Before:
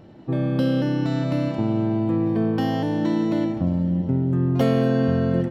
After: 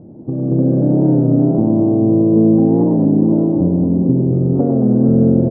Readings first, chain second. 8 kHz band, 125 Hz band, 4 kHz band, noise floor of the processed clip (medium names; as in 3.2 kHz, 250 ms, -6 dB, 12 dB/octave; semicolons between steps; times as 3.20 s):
no reading, +7.5 dB, under -40 dB, -32 dBFS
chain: four-pole ladder low-pass 960 Hz, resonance 25%; peaking EQ 240 Hz +12 dB 2.6 oct; compression, threshold -24 dBFS, peak gain reduction 12.5 dB; bass shelf 340 Hz +7 dB; on a send: bouncing-ball echo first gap 230 ms, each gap 0.9×, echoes 5; on the sum: level rider; frequency-shifting echo 103 ms, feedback 34%, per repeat +110 Hz, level -11 dB; warped record 33 1/3 rpm, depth 100 cents; trim -1 dB